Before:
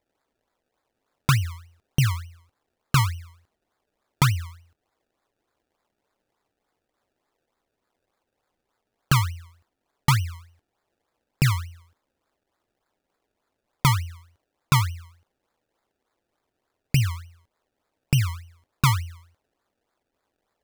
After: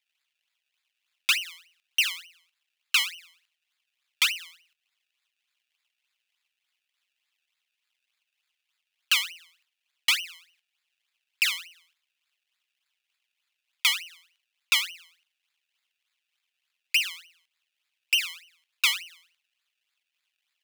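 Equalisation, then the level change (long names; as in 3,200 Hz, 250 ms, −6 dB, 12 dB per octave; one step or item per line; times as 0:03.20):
high-pass with resonance 2,700 Hz, resonance Q 3.5
0.0 dB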